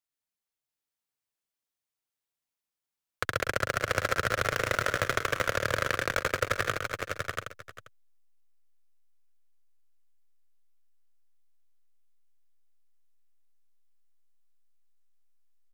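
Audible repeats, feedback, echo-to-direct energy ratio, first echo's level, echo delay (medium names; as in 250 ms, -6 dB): 10, no regular repeats, -1.5 dB, -9.0 dB, 109 ms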